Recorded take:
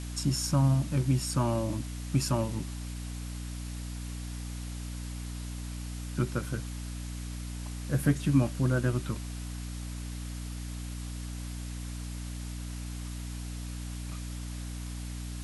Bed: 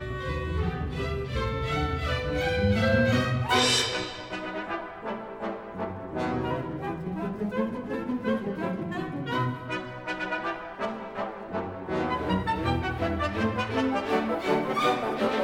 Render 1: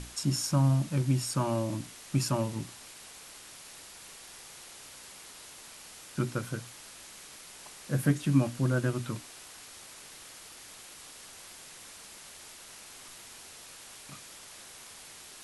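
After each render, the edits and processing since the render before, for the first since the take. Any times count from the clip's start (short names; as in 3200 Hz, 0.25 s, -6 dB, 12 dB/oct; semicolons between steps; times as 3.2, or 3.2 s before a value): notches 60/120/180/240/300 Hz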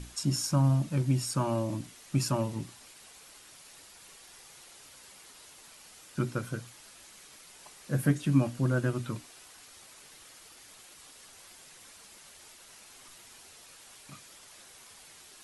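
denoiser 6 dB, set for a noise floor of -50 dBFS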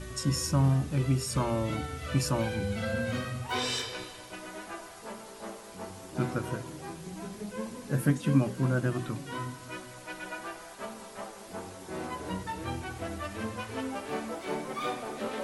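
add bed -9 dB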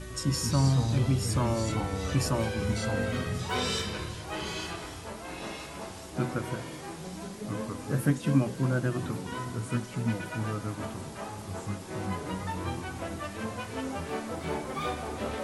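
thin delay 1.128 s, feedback 79%, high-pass 5100 Hz, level -16.5 dB; echoes that change speed 0.132 s, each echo -3 st, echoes 3, each echo -6 dB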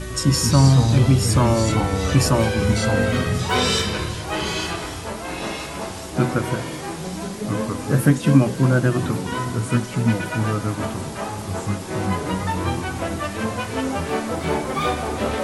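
gain +10.5 dB; limiter -3 dBFS, peak gain reduction 1.5 dB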